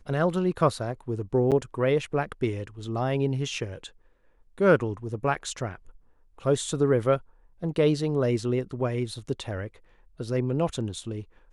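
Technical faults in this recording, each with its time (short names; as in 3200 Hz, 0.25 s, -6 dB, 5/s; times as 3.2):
1.51–1.52 gap 7.9 ms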